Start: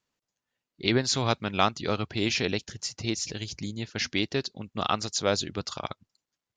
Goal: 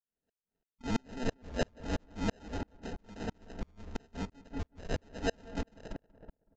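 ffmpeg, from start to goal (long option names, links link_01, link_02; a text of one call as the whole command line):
ffmpeg -i in.wav -filter_complex "[0:a]afftfilt=real='real(if(lt(b,272),68*(eq(floor(b/68),0)*3+eq(floor(b/68),1)*2+eq(floor(b/68),2)*1+eq(floor(b/68),3)*0)+mod(b,68),b),0)':imag='imag(if(lt(b,272),68*(eq(floor(b/68),0)*3+eq(floor(b/68),1)*2+eq(floor(b/68),2)*1+eq(floor(b/68),3)*0)+mod(b,68),b),0)':win_size=2048:overlap=0.75,bandreject=frequency=50:width_type=h:width=6,bandreject=frequency=100:width_type=h:width=6,bandreject=frequency=150:width_type=h:width=6,bandreject=frequency=200:width_type=h:width=6,bandreject=frequency=250:width_type=h:width=6,bandreject=frequency=300:width_type=h:width=6,bandreject=frequency=350:width_type=h:width=6,bandreject=frequency=400:width_type=h:width=6,bandreject=frequency=450:width_type=h:width=6,aecho=1:1:4.4:0.91,acrossover=split=160|2400[link_01][link_02][link_03];[link_01]acompressor=threshold=-56dB:ratio=16[link_04];[link_04][link_02][link_03]amix=inputs=3:normalize=0,acrusher=samples=39:mix=1:aa=0.000001,asoftclip=type=tanh:threshold=-23.5dB,asplit=2[link_05][link_06];[link_06]adelay=187,lowpass=frequency=1700:poles=1,volume=-6dB,asplit=2[link_07][link_08];[link_08]adelay=187,lowpass=frequency=1700:poles=1,volume=0.53,asplit=2[link_09][link_10];[link_10]adelay=187,lowpass=frequency=1700:poles=1,volume=0.53,asplit=2[link_11][link_12];[link_12]adelay=187,lowpass=frequency=1700:poles=1,volume=0.53,asplit=2[link_13][link_14];[link_14]adelay=187,lowpass=frequency=1700:poles=1,volume=0.53,asplit=2[link_15][link_16];[link_16]adelay=187,lowpass=frequency=1700:poles=1,volume=0.53,asplit=2[link_17][link_18];[link_18]adelay=187,lowpass=frequency=1700:poles=1,volume=0.53[link_19];[link_07][link_09][link_11][link_13][link_15][link_17][link_19]amix=inputs=7:normalize=0[link_20];[link_05][link_20]amix=inputs=2:normalize=0,aresample=16000,aresample=44100,aeval=exprs='val(0)*pow(10,-39*if(lt(mod(-3*n/s,1),2*abs(-3)/1000),1-mod(-3*n/s,1)/(2*abs(-3)/1000),(mod(-3*n/s,1)-2*abs(-3)/1000)/(1-2*abs(-3)/1000))/20)':channel_layout=same,volume=1dB" out.wav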